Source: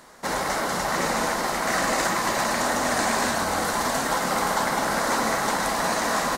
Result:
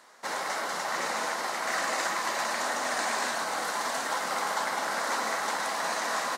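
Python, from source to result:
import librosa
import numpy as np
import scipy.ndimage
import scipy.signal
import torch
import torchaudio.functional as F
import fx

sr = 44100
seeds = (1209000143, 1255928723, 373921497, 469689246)

y = fx.weighting(x, sr, curve='A')
y = y * 10.0 ** (-5.5 / 20.0)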